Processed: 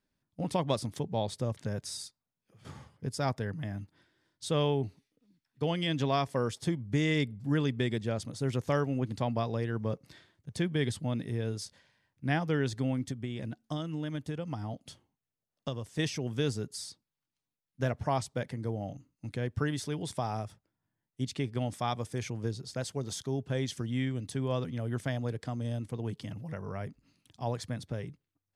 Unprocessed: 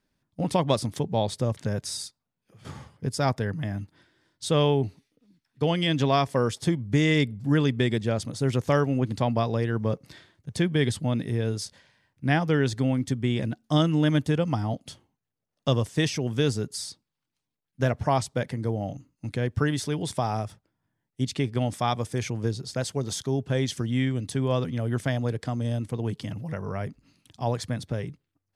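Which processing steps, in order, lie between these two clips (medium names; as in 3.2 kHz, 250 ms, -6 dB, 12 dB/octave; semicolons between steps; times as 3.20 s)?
13.10–15.99 s: compression 6:1, threshold -26 dBFS, peak gain reduction 9 dB; trim -6.5 dB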